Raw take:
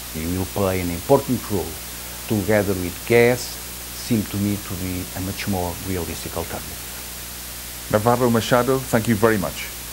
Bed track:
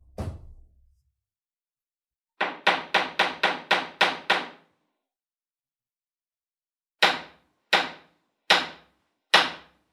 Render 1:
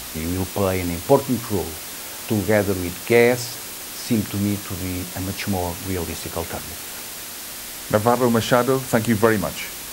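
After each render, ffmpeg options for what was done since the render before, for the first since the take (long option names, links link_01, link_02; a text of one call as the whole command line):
ffmpeg -i in.wav -af "bandreject=frequency=60:width_type=h:width=4,bandreject=frequency=120:width_type=h:width=4,bandreject=frequency=180:width_type=h:width=4" out.wav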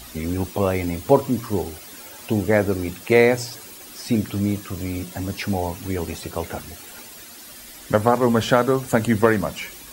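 ffmpeg -i in.wav -af "afftdn=noise_reduction=11:noise_floor=-34" out.wav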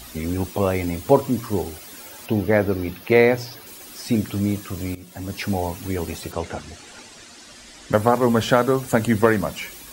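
ffmpeg -i in.wav -filter_complex "[0:a]asettb=1/sr,asplit=3[link_01][link_02][link_03];[link_01]atrim=end=2.264[link_04];[link_02]atrim=start=2.26:end=3.67,asetpts=PTS-STARTPTS,afade=type=in:duration=0.004:curve=qsin,afade=type=out:start_time=1.406:duration=0.004:curve=qsin,equalizer=frequency=7900:width_type=o:width=0.61:gain=-14.5[link_05];[link_03]atrim=start=3.666[link_06];[link_04][link_05]acrossfade=duration=0.004:curve1=hsin:curve2=qsin[link_07];[link_07][link_06]acrossfade=duration=0.004:curve1=qsin:curve2=hsin,asettb=1/sr,asplit=3[link_08][link_09][link_10];[link_08]atrim=end=6.324[link_11];[link_09]atrim=start=6.32:end=7.93,asetpts=PTS-STARTPTS,afade=type=in:duration=0.004:curve=qsin,afade=type=out:start_time=1.606:duration=0.004:curve=qsin,lowpass=frequency=8000:width=0.5412,lowpass=frequency=8000:width=1.3066[link_12];[link_10]atrim=start=7.926[link_13];[link_11][link_12]acrossfade=duration=0.004:curve1=hsin:curve2=qsin[link_14];[link_14][link_13]acrossfade=duration=0.004:curve1=qsin:curve2=hsin,asplit=2[link_15][link_16];[link_15]atrim=end=4.95,asetpts=PTS-STARTPTS,afade=type=out:start_time=4.946:duration=0.004:curve=hsin:silence=0.149624[link_17];[link_16]atrim=start=4.95,asetpts=PTS-STARTPTS,afade=type=in:duration=0.48:silence=0.149624[link_18];[link_17][link_18]concat=n=2:v=0:a=1" out.wav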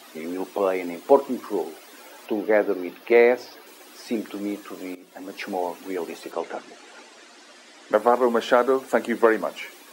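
ffmpeg -i in.wav -af "highpass=frequency=290:width=0.5412,highpass=frequency=290:width=1.3066,highshelf=frequency=4000:gain=-11.5" out.wav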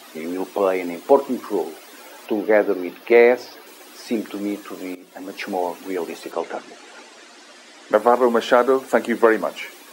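ffmpeg -i in.wav -af "volume=3.5dB,alimiter=limit=-2dB:level=0:latency=1" out.wav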